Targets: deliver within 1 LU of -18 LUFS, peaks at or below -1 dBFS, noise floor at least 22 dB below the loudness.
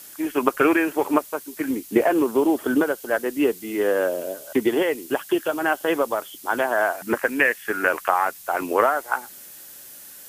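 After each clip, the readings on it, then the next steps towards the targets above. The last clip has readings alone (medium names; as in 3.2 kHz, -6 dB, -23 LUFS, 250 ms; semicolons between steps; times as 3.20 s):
noise floor -43 dBFS; noise floor target -45 dBFS; loudness -22.5 LUFS; peak level -2.0 dBFS; loudness target -18.0 LUFS
-> noise reduction 6 dB, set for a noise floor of -43 dBFS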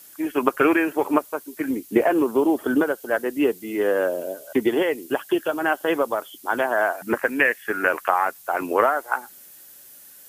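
noise floor -47 dBFS; loudness -22.5 LUFS; peak level -2.0 dBFS; loudness target -18.0 LUFS
-> trim +4.5 dB; peak limiter -1 dBFS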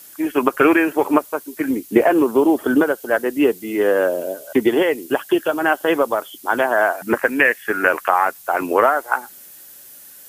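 loudness -18.5 LUFS; peak level -1.0 dBFS; noise floor -42 dBFS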